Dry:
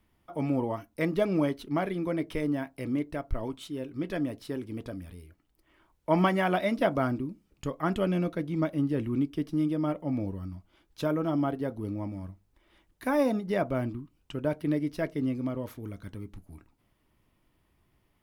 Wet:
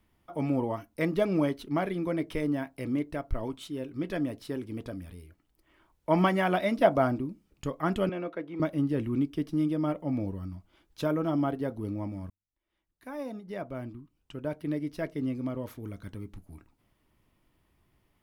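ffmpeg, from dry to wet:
-filter_complex "[0:a]asettb=1/sr,asplit=3[s0][s1][s2];[s0]atrim=end=6.834[s3];[s1]atrim=start=6.83:end=7.27,asetpts=PTS-STARTPTS,afade=t=in:d=0.004:c=qsin,afade=t=out:st=0.436:d=0.004:c=qsin,equalizer=f=700:w=1.9:g=6[s4];[s2]atrim=start=7.266[s5];[s3][s4]acrossfade=d=0.004:c1=hsin:c2=qsin[s6];[s6][s5]acrossfade=d=0.004:c1=qsin:c2=hsin,asettb=1/sr,asplit=3[s7][s8][s9];[s7]atrim=end=8.094[s10];[s8]atrim=start=8.09:end=8.6,asetpts=PTS-STARTPTS,afade=t=in:d=0.004:c=qsin,afade=t=out:st=0.506:d=0.004:c=qsin,acrossover=split=310 3000:gain=0.126 1 0.126[s11][s12][s13];[s11][s12][s13]amix=inputs=3:normalize=0[s14];[s9]atrim=start=8.596[s15];[s10][s14]acrossfade=d=0.004:c1=hsin:c2=qsin[s16];[s16][s15]acrossfade=d=0.004:c1=qsin:c2=hsin,asplit=2[s17][s18];[s17]atrim=end=12.3,asetpts=PTS-STARTPTS,afade=t=out:st=12.296:d=0.004:c=hsin[s19];[s18]atrim=start=12.3,asetpts=PTS-STARTPTS,afade=t=in:d=3.7[s20];[s19][s20]concat=n=2:v=0:a=1"

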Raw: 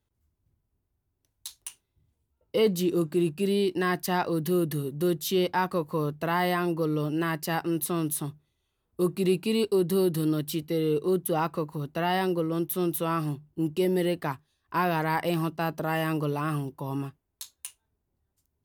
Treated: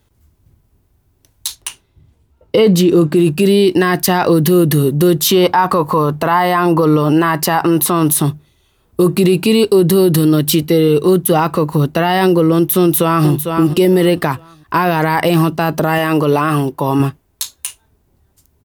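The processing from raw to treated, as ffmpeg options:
-filter_complex "[0:a]asettb=1/sr,asplit=3[s0][s1][s2];[s0]atrim=end=1.554[s3];[s1]atrim=start=1.55:end=3.16,asetpts=PTS-STARTPTS,afade=t=in:d=0.004:c=qsin,afade=t=out:st=1.606:d=0.004:c=qsin,highshelf=f=6600:g=-10[s4];[s2]atrim=start=3.156[s5];[s3][s4]acrossfade=d=0.004:c1=hsin:c2=qsin[s6];[s6][s5]acrossfade=d=0.004:c1=qsin:c2=hsin,asettb=1/sr,asplit=3[s7][s8][s9];[s7]atrim=end=5.204[s10];[s8]atrim=start=5.2:end=8.16,asetpts=PTS-STARTPTS,afade=t=in:d=0.004:c=qsin,afade=t=out:st=2.956:d=0.004:c=qsin,equalizer=f=980:w=1.2:g=9[s11];[s9]atrim=start=8.156[s12];[s10][s11]acrossfade=d=0.004:c1=hsin:c2=qsin[s13];[s13][s12]acrossfade=d=0.004:c1=qsin:c2=hsin,asettb=1/sr,asplit=3[s14][s15][s16];[s14]atrim=end=10.884[s17];[s15]atrim=start=10.88:end=11.37,asetpts=PTS-STARTPTS,afade=t=in:d=0.004:c=qsin,afade=t=out:st=0.486:d=0.004:c=qsin,equalizer=f=400:t=o:w=1.8:g=-3.5[s18];[s16]atrim=start=11.366[s19];[s17][s18]acrossfade=d=0.004:c1=hsin:c2=qsin[s20];[s20][s19]acrossfade=d=0.004:c1=qsin:c2=hsin,asplit=2[s21][s22];[s22]afade=t=in:st=12.79:d=0.01,afade=t=out:st=13.28:d=0.01,aecho=0:1:450|900|1350:0.281838|0.0704596|0.0176149[s23];[s21][s23]amix=inputs=2:normalize=0,asettb=1/sr,asplit=3[s24][s25][s26];[s24]atrim=end=15.984[s27];[s25]atrim=start=15.98:end=17,asetpts=PTS-STARTPTS,afade=t=in:d=0.004:c=qsin,afade=t=out:st=1.016:d=0.004:c=qsin,bass=f=250:g=-7,treble=f=4000:g=-3[s28];[s26]atrim=start=16.996[s29];[s27][s28]acrossfade=d=0.004:c1=hsin:c2=qsin[s30];[s30][s29]acrossfade=d=0.004:c1=qsin:c2=hsin,alimiter=level_in=14.1:limit=0.891:release=50:level=0:latency=1,volume=0.75"

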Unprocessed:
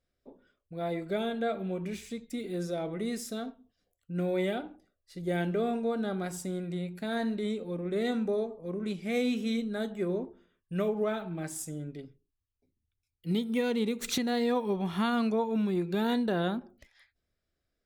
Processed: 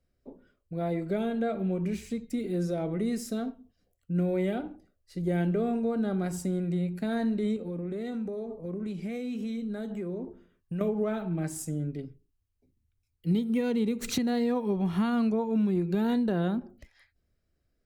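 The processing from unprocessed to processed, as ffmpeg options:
-filter_complex "[0:a]asettb=1/sr,asplit=3[s0][s1][s2];[s0]atrim=end=7.564[s3];[s1]atrim=start=7.56:end=10.81,asetpts=PTS-STARTPTS,afade=t=in:d=0.004:c=qsin,afade=t=out:st=3.246:d=0.004:c=qsin,acompressor=threshold=0.0141:ratio=6:attack=3.2:release=140:knee=1:detection=peak[s4];[s2]atrim=start=10.806[s5];[s3][s4]acrossfade=d=0.004:c1=hsin:c2=qsin[s6];[s6][s5]acrossfade=d=0.004:c1=qsin:c2=hsin,lowshelf=f=390:g=9,bandreject=f=3500:w=12,acrossover=split=130[s7][s8];[s8]acompressor=threshold=0.0398:ratio=2[s9];[s7][s9]amix=inputs=2:normalize=0"

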